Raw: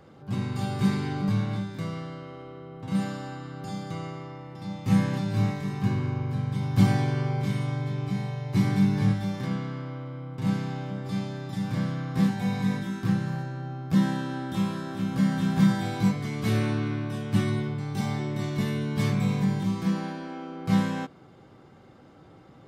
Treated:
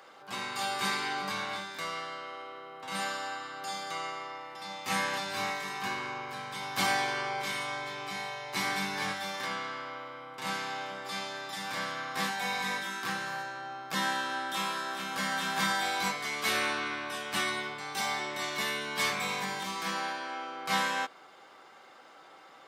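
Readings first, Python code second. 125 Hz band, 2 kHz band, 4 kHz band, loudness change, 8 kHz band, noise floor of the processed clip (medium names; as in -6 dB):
-23.5 dB, +7.0 dB, +7.5 dB, -5.0 dB, +7.5 dB, -54 dBFS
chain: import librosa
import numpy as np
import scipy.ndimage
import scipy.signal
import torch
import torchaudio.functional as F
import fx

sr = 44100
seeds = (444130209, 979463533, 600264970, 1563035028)

y = scipy.signal.sosfilt(scipy.signal.butter(2, 890.0, 'highpass', fs=sr, output='sos'), x)
y = F.gain(torch.from_numpy(y), 7.5).numpy()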